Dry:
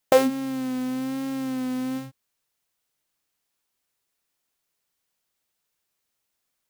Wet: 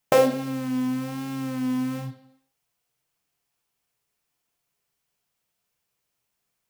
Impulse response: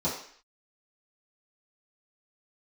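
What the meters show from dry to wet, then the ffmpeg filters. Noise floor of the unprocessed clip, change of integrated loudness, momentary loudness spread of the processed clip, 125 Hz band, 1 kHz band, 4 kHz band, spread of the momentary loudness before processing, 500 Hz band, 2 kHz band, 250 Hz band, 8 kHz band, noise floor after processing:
-79 dBFS, +0.5 dB, 11 LU, +9.0 dB, +0.5 dB, -1.0 dB, 11 LU, +0.5 dB, +0.5 dB, 0.0 dB, -1.0 dB, -79 dBFS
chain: -filter_complex "[0:a]asplit=2[a][b];[1:a]atrim=start_sample=2205,asetrate=33957,aresample=44100[c];[b][c]afir=irnorm=-1:irlink=0,volume=-15.5dB[d];[a][d]amix=inputs=2:normalize=0"

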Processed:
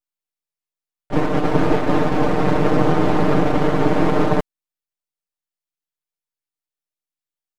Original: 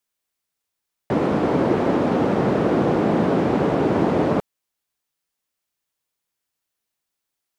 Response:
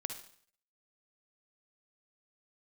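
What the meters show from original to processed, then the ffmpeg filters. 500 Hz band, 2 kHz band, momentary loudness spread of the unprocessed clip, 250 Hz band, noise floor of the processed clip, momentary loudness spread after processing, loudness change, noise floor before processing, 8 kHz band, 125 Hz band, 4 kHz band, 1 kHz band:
+0.5 dB, +4.0 dB, 3 LU, +0.5 dB, under -85 dBFS, 4 LU, +1.5 dB, -82 dBFS, n/a, +3.5 dB, +4.5 dB, +3.0 dB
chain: -af "aeval=exprs='max(val(0),0)':c=same,agate=range=-15dB:threshold=-22dB:ratio=16:detection=peak,aecho=1:1:6.6:0.73,volume=4.5dB"

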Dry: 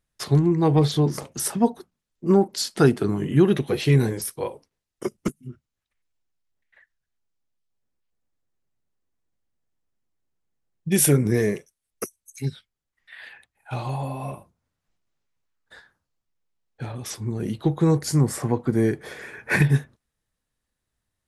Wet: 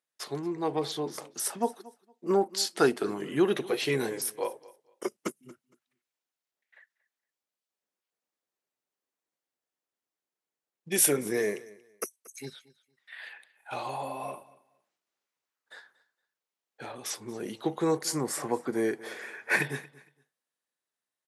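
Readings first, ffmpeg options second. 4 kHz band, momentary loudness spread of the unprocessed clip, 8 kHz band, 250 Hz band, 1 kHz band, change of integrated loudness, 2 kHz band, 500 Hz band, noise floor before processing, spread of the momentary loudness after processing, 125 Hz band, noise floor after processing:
-2.5 dB, 16 LU, -2.5 dB, -10.5 dB, -3.0 dB, -7.5 dB, -2.5 dB, -5.0 dB, -83 dBFS, 18 LU, -20.5 dB, under -85 dBFS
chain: -filter_complex "[0:a]highpass=400,dynaudnorm=f=330:g=11:m=5.5dB,asplit=2[a][b];[b]aecho=0:1:231|462:0.0891|0.0196[c];[a][c]amix=inputs=2:normalize=0,volume=-6.5dB"

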